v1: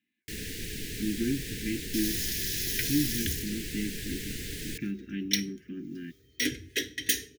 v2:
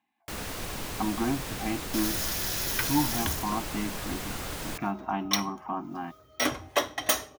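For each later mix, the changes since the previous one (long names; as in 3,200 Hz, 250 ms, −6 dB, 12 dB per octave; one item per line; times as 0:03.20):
master: remove Chebyshev band-stop filter 450–1,700 Hz, order 4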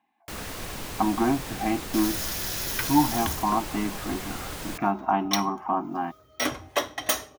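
speech: add parametric band 640 Hz +8.5 dB 2.8 octaves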